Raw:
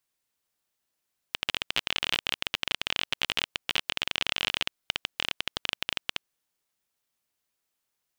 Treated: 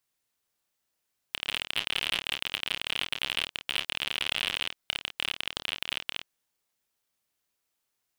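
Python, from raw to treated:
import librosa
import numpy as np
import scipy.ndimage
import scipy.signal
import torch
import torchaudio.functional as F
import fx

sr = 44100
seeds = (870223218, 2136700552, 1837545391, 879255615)

y = fx.room_early_taps(x, sr, ms=(29, 52), db=(-9.0, -14.0))
y = np.clip(y, -10.0 ** (-13.5 / 20.0), 10.0 ** (-13.5 / 20.0))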